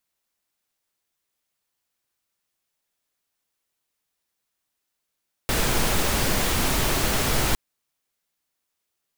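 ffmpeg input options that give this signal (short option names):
-f lavfi -i "anoisesrc=c=pink:a=0.407:d=2.06:r=44100:seed=1"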